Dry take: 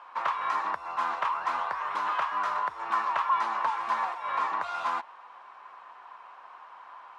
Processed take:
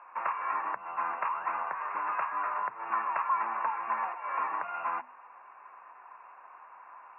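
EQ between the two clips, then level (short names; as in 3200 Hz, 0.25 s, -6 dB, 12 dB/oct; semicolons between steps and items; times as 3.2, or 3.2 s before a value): HPF 120 Hz 24 dB/oct; brick-wall FIR low-pass 2800 Hz; notches 50/100/150/200/250 Hz; -3.0 dB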